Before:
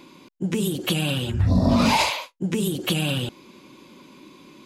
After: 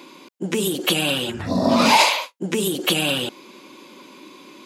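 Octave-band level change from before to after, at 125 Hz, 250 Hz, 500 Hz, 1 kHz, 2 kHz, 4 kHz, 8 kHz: -7.5, 0.0, +5.5, +6.0, +6.0, +6.0, +6.0 dB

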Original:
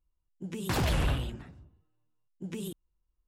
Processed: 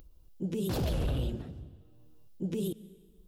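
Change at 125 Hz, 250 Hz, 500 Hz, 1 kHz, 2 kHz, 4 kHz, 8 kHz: -1.0, +2.5, +2.5, -8.0, -11.5, -5.5, -5.0 dB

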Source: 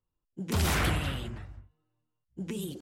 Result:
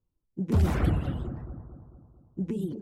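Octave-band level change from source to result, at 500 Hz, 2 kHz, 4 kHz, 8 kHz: +2.0 dB, -9.0 dB, -13.0 dB, under -10 dB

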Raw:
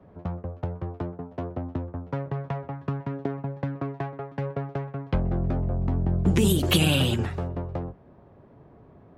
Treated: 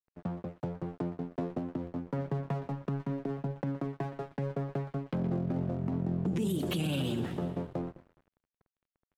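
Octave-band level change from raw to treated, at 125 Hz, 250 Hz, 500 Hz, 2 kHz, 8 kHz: -7.5, -4.5, -5.5, -12.0, -15.0 dB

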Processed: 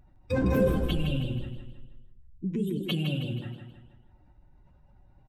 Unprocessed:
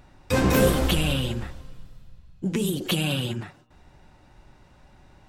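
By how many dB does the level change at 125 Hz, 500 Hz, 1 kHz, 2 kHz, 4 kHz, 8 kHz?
-3.0 dB, -4.5 dB, -10.0 dB, -9.5 dB, -9.5 dB, under -20 dB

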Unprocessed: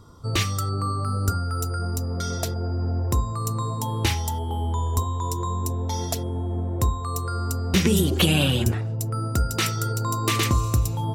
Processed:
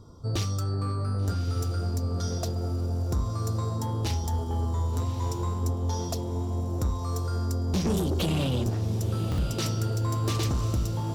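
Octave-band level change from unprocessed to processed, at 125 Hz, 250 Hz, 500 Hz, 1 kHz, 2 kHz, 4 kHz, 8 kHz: -2.5, -4.0, -3.5, -7.5, -12.5, -9.0, -8.5 dB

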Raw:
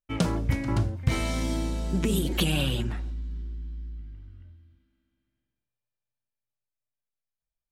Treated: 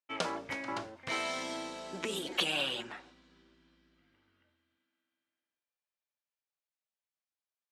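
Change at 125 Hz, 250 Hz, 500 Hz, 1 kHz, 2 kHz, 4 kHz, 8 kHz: -26.0, -14.5, -5.5, -1.0, -1.0, -1.5, -7.0 dB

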